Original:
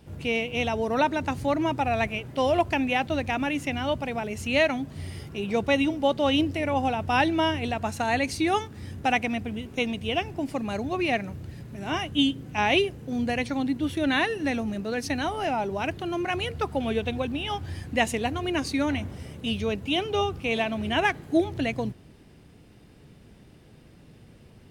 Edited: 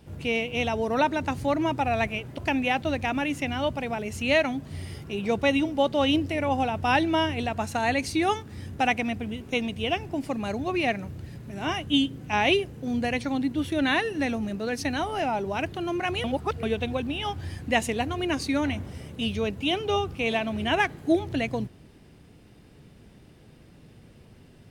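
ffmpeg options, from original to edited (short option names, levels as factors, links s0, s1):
-filter_complex "[0:a]asplit=4[s0][s1][s2][s3];[s0]atrim=end=2.382[s4];[s1]atrim=start=2.628:end=16.492[s5];[s2]atrim=start=16.488:end=16.882,asetpts=PTS-STARTPTS,areverse[s6];[s3]atrim=start=16.878[s7];[s4][s5]acrossfade=d=0.004:c1=hsin:c2=hsin[s8];[s8][s6]acrossfade=d=0.004:c1=hsin:c2=hsin[s9];[s9][s7]acrossfade=d=0.004:c1=hsin:c2=hsin"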